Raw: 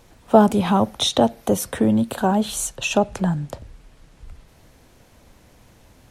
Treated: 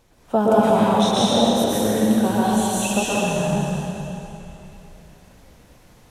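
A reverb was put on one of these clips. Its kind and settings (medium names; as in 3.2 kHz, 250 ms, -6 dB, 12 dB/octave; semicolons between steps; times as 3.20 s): plate-style reverb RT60 3.1 s, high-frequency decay 0.95×, pre-delay 105 ms, DRR -8 dB; trim -7 dB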